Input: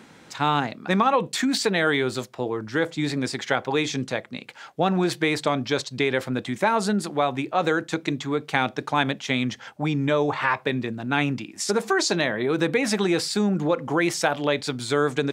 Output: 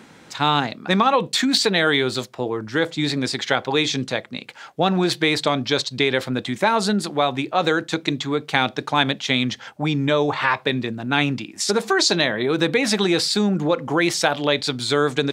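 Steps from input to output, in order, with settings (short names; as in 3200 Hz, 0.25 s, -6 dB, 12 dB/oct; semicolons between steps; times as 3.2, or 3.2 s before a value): dynamic EQ 3900 Hz, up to +7 dB, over -44 dBFS, Q 1.7; gain +2.5 dB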